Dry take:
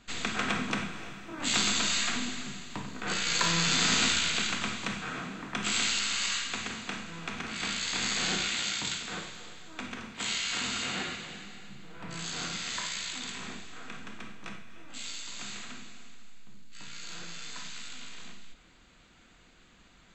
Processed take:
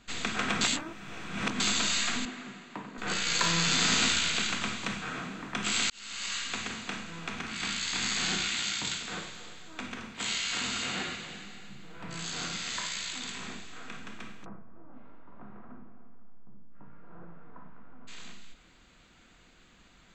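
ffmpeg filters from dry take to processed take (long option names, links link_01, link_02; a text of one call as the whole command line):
ffmpeg -i in.wav -filter_complex "[0:a]asettb=1/sr,asplit=3[link_01][link_02][link_03];[link_01]atrim=end=2.254[link_04];[link_02]atrim=start=2.25:end=2.98,asetpts=PTS-STARTPTS,afade=type=in:duration=0.004:curve=qsin,afade=type=out:start_time=0.726:duration=0.004:curve=qsin,acrossover=split=170 2500:gain=0.0708 1 0.224[link_05][link_06][link_07];[link_05][link_06][link_07]amix=inputs=3:normalize=0[link_08];[link_03]atrim=start=2.976[link_09];[link_04][link_08]acrossfade=duration=0.004:curve1=hsin:curve2=qsin[link_10];[link_10][link_09]acrossfade=duration=0.004:curve1=qsin:curve2=hsin,asettb=1/sr,asplit=3[link_11][link_12][link_13];[link_11]atrim=end=7.444[link_14];[link_12]atrim=start=7.44:end=8.81,asetpts=PTS-STARTPTS,afade=type=in:duration=0.004:curve=qsin,afade=type=out:start_time=1.366:duration=0.004:curve=qsin,equalizer=frequency=530:width_type=o:width=0.77:gain=-6[link_15];[link_13]atrim=start=8.806[link_16];[link_14][link_15]acrossfade=duration=0.004:curve1=hsin:curve2=qsin[link_17];[link_17][link_16]acrossfade=duration=0.004:curve1=qsin:curve2=hsin,asplit=3[link_18][link_19][link_20];[link_18]afade=type=out:start_time=14.44:duration=0.02[link_21];[link_19]lowpass=frequency=1100:width=0.5412,lowpass=frequency=1100:width=1.3066,afade=type=in:start_time=14.44:duration=0.02,afade=type=out:start_time=18.07:duration=0.02[link_22];[link_20]afade=type=in:start_time=18.07:duration=0.02[link_23];[link_21][link_22][link_23]amix=inputs=3:normalize=0,asplit=4[link_24][link_25][link_26][link_27];[link_24]atrim=end=0.612[link_28];[link_25]atrim=start=0.608:end=1.602,asetpts=PTS-STARTPTS,areverse[link_29];[link_26]atrim=start=1.598:end=5.9,asetpts=PTS-STARTPTS,afade=type=out:start_time=4.298:duration=0.004:curve=hsin[link_30];[link_27]atrim=start=5.9,asetpts=PTS-STARTPTS,afade=type=in:duration=0.62[link_31];[link_28][link_29]acrossfade=duration=0.004:curve1=hsin:curve2=hsin[link_32];[link_30][link_31]concat=n=2:v=0:a=1[link_33];[link_32][link_33]acrossfade=duration=0.004:curve1=hsin:curve2=hsin" out.wav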